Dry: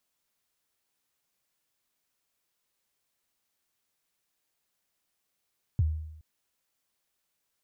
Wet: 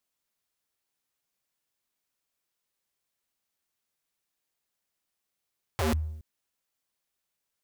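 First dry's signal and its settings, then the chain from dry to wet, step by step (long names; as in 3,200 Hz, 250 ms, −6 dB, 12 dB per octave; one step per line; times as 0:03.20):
synth kick length 0.42 s, from 130 Hz, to 78 Hz, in 31 ms, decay 0.84 s, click off, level −19 dB
dynamic equaliser 510 Hz, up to −5 dB, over −52 dBFS, Q 1
leveller curve on the samples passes 2
wrap-around overflow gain 23.5 dB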